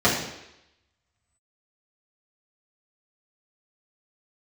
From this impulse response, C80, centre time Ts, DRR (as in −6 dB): 7.0 dB, 41 ms, −8.5 dB